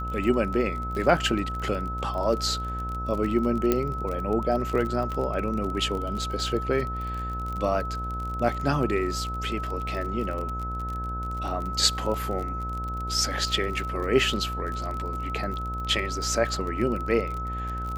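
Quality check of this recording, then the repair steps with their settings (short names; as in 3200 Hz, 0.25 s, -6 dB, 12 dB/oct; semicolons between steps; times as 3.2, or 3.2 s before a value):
buzz 60 Hz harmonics 24 -33 dBFS
crackle 38/s -31 dBFS
tone 1300 Hz -32 dBFS
3.72 pop -9 dBFS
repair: de-click; de-hum 60 Hz, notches 24; notch 1300 Hz, Q 30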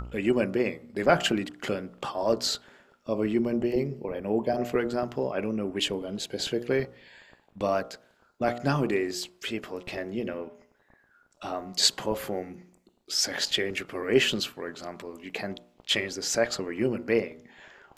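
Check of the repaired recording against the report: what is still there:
3.72 pop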